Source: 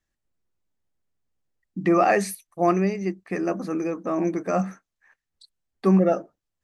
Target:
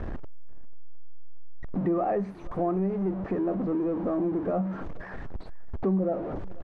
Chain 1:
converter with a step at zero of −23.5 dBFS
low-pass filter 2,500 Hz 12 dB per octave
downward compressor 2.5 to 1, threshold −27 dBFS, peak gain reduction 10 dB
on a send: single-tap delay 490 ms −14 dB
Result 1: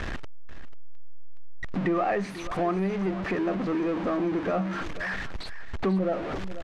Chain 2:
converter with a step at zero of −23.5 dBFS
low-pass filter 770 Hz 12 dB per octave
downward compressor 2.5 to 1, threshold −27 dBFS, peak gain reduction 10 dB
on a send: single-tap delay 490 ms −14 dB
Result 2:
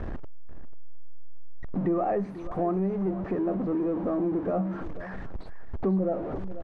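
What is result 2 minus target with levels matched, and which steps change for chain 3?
echo-to-direct +9 dB
change: single-tap delay 490 ms −23 dB

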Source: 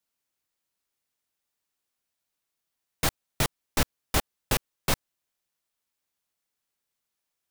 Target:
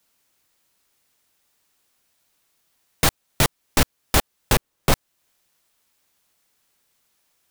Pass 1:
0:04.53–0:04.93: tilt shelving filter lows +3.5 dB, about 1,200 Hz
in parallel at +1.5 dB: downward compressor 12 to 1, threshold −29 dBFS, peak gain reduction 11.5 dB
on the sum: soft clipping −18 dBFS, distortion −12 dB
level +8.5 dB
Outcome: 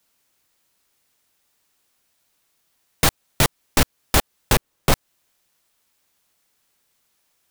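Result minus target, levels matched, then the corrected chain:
downward compressor: peak gain reduction −8 dB
0:04.53–0:04.93: tilt shelving filter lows +3.5 dB, about 1,200 Hz
in parallel at +1.5 dB: downward compressor 12 to 1, threshold −38 dBFS, peak gain reduction 19.5 dB
on the sum: soft clipping −18 dBFS, distortion −14 dB
level +8.5 dB

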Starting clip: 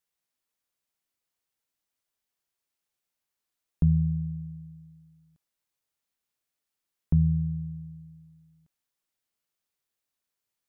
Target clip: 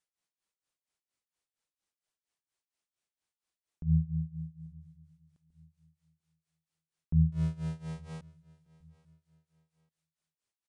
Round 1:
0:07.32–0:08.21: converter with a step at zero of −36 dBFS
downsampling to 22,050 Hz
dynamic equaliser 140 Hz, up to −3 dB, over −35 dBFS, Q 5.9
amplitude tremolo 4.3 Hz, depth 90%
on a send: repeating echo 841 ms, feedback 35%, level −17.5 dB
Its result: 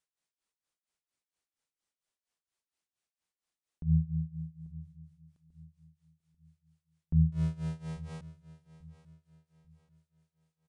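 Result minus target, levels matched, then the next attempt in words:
echo-to-direct +6 dB
0:07.32–0:08.21: converter with a step at zero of −36 dBFS
downsampling to 22,050 Hz
dynamic equaliser 140 Hz, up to −3 dB, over −35 dBFS, Q 5.9
amplitude tremolo 4.3 Hz, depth 90%
on a send: repeating echo 841 ms, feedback 35%, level −23.5 dB

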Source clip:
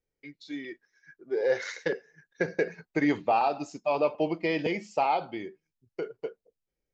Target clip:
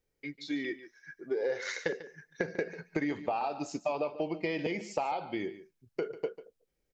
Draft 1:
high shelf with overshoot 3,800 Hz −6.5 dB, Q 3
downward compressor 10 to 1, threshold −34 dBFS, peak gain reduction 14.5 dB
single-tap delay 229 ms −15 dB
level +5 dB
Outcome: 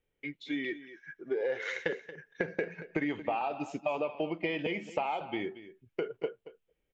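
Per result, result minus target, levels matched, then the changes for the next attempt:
echo 84 ms late; 8,000 Hz band −9.5 dB
change: single-tap delay 145 ms −15 dB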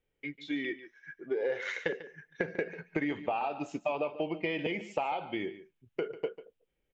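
8,000 Hz band −9.5 dB
remove: high shelf with overshoot 3,800 Hz −6.5 dB, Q 3

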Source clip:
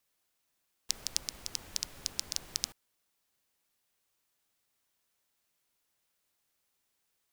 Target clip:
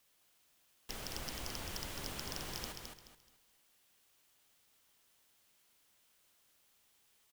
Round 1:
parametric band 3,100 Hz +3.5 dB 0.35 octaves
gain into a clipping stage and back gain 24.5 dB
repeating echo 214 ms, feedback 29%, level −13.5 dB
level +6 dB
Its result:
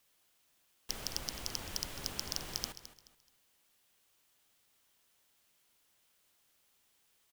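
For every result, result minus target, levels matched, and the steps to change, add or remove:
echo-to-direct −8.5 dB; gain into a clipping stage and back: distortion −6 dB
change: repeating echo 214 ms, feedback 29%, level −5 dB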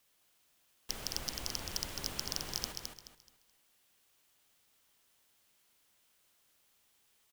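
gain into a clipping stage and back: distortion −6 dB
change: gain into a clipping stage and back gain 35 dB

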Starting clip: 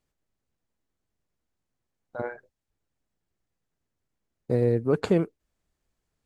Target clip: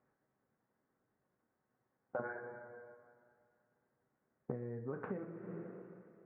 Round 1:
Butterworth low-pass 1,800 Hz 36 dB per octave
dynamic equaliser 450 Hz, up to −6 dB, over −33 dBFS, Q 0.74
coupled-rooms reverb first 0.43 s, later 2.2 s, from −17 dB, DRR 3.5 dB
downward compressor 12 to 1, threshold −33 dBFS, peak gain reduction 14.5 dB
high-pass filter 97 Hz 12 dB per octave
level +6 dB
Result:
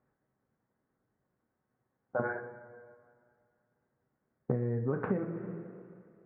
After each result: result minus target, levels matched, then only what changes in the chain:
downward compressor: peak gain reduction −8.5 dB; 125 Hz band +2.0 dB
change: downward compressor 12 to 1, threshold −42 dBFS, peak gain reduction 23 dB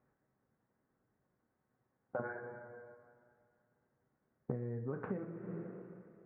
125 Hz band +3.0 dB
add after high-pass filter: low-shelf EQ 160 Hz −8 dB

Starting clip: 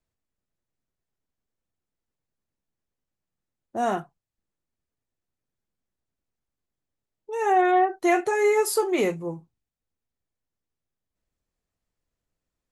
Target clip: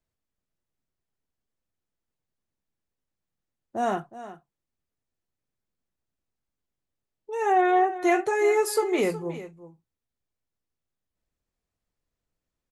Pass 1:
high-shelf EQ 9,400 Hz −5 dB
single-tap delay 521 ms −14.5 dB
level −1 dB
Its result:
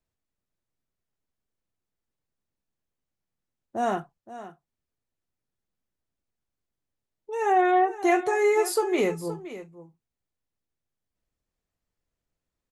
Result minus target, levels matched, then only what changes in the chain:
echo 155 ms late
change: single-tap delay 366 ms −14.5 dB

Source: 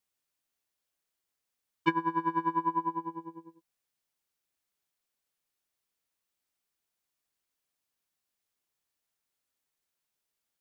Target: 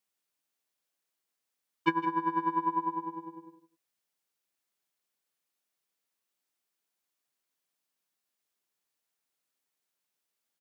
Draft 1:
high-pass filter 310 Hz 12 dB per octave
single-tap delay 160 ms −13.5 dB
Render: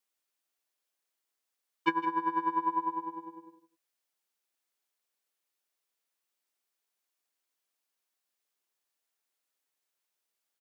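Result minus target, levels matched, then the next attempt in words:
125 Hz band −8.5 dB
high-pass filter 150 Hz 12 dB per octave
single-tap delay 160 ms −13.5 dB

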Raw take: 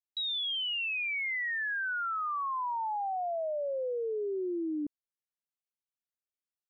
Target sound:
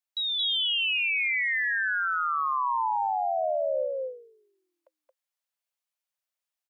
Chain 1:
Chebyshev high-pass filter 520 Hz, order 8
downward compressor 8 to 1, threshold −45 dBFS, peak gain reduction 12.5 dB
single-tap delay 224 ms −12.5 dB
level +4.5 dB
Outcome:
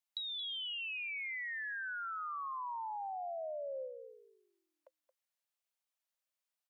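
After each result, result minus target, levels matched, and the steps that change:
downward compressor: peak gain reduction +12.5 dB; echo-to-direct −10.5 dB
remove: downward compressor 8 to 1, threshold −45 dBFS, peak gain reduction 12.5 dB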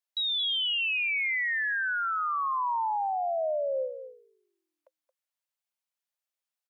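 echo-to-direct −10.5 dB
change: single-tap delay 224 ms −2 dB

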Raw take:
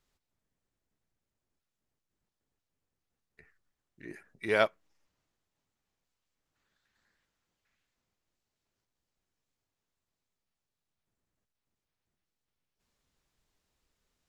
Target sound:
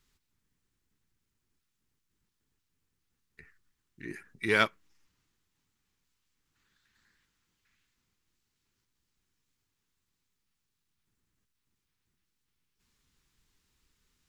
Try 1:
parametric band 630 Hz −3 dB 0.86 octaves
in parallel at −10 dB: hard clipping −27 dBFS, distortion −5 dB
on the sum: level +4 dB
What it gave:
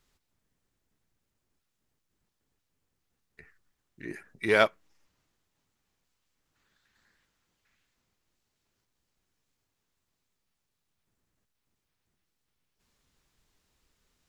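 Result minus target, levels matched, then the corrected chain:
500 Hz band +4.0 dB
parametric band 630 Hz −14 dB 0.86 octaves
in parallel at −10 dB: hard clipping −27 dBFS, distortion −8 dB
on the sum: level +4 dB

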